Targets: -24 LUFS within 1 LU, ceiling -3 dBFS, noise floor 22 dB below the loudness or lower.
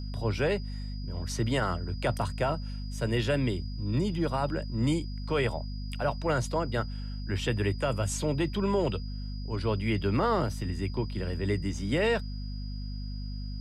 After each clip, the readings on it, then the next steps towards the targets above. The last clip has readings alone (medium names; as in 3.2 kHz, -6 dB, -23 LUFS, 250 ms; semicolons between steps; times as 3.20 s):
hum 50 Hz; highest harmonic 250 Hz; hum level -33 dBFS; steady tone 4.9 kHz; tone level -49 dBFS; loudness -31.0 LUFS; peak level -16.0 dBFS; loudness target -24.0 LUFS
-> hum notches 50/100/150/200/250 Hz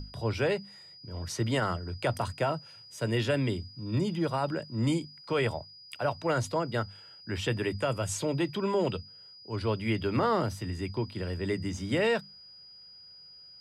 hum not found; steady tone 4.9 kHz; tone level -49 dBFS
-> band-stop 4.9 kHz, Q 30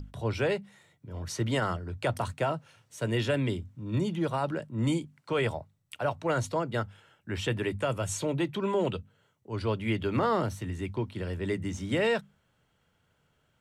steady tone not found; loudness -31.0 LUFS; peak level -16.5 dBFS; loudness target -24.0 LUFS
-> trim +7 dB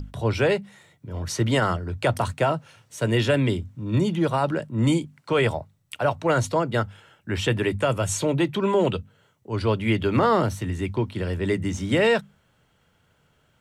loudness -24.0 LUFS; peak level -9.5 dBFS; noise floor -65 dBFS